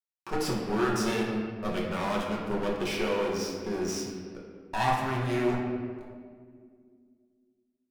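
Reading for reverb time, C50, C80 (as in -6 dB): 2.0 s, 1.5 dB, 3.0 dB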